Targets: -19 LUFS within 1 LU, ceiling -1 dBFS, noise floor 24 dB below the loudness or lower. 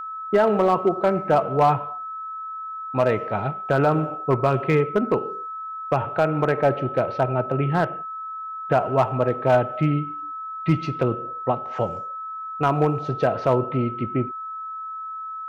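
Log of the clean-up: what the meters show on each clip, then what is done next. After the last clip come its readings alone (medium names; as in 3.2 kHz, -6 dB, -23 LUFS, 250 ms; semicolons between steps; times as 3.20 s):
clipped samples 0.4%; clipping level -10.5 dBFS; steady tone 1.3 kHz; tone level -30 dBFS; loudness -23.5 LUFS; peak level -10.5 dBFS; loudness target -19.0 LUFS
-> clip repair -10.5 dBFS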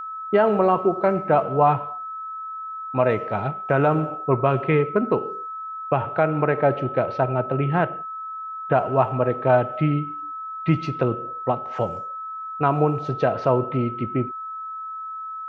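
clipped samples 0.0%; steady tone 1.3 kHz; tone level -30 dBFS
-> band-stop 1.3 kHz, Q 30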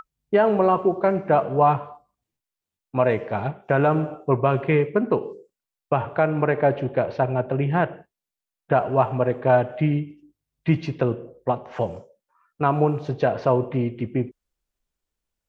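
steady tone not found; loudness -22.5 LUFS; peak level -6.5 dBFS; loudness target -19.0 LUFS
-> trim +3.5 dB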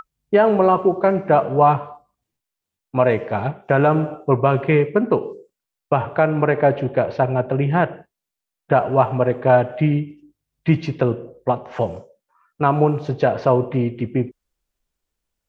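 loudness -19.0 LUFS; peak level -3.0 dBFS; noise floor -84 dBFS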